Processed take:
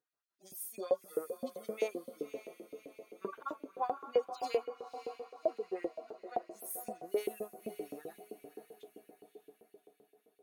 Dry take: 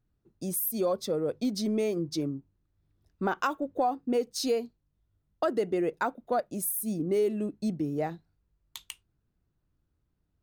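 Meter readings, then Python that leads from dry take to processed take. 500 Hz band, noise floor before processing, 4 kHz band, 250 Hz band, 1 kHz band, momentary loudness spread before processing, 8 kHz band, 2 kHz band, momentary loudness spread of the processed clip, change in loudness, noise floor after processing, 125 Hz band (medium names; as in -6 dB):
-7.0 dB, -77 dBFS, -14.0 dB, -16.5 dB, -8.0 dB, 15 LU, -13.0 dB, -12.5 dB, 18 LU, -9.5 dB, -79 dBFS, under -20 dB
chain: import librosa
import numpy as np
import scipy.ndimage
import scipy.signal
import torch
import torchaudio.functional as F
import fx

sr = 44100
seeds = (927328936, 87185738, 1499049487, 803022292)

y = fx.hpss_only(x, sr, part='harmonic')
y = fx.echo_diffused(y, sr, ms=564, feedback_pct=54, wet_db=-10)
y = fx.filter_lfo_highpass(y, sr, shape='saw_up', hz=7.7, low_hz=420.0, high_hz=2700.0, q=1.7)
y = y * librosa.db_to_amplitude(-3.0)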